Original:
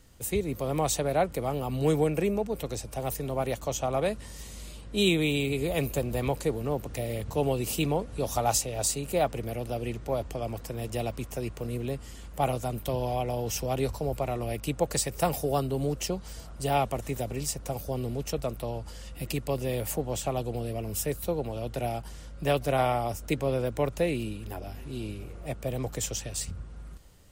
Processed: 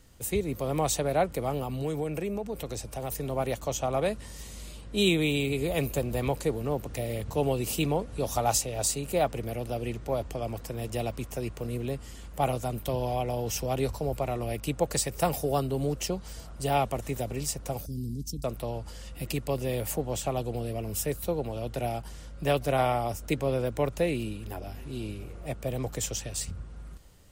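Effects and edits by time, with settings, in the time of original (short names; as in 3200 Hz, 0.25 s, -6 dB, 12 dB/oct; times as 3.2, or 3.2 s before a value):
1.63–3.12 compressor 2.5:1, threshold -30 dBFS
17.86–18.44 elliptic band-stop 280–4900 Hz, stop band 60 dB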